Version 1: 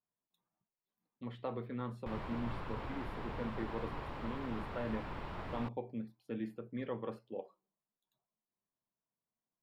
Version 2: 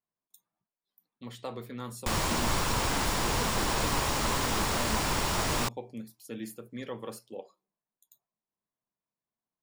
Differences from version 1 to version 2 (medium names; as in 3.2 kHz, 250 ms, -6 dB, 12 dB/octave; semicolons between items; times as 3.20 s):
background +12.0 dB; master: remove distance through air 470 m